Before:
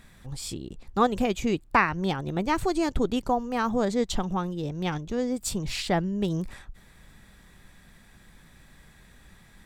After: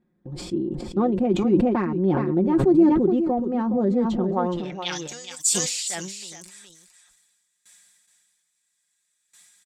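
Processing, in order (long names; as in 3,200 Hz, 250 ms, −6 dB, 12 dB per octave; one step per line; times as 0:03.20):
noise gate with hold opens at −40 dBFS
comb filter 5.6 ms, depth 65%
in parallel at +2 dB: downward compressor, threshold −39 dBFS, peak gain reduction 22.5 dB
on the sum: soft clipping −10.5 dBFS, distortion −22 dB
band-pass filter sweep 300 Hz → 7,600 Hz, 0:04.21–0:05.05
single-tap delay 419 ms −9.5 dB
level that may fall only so fast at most 37 dB per second
level +8 dB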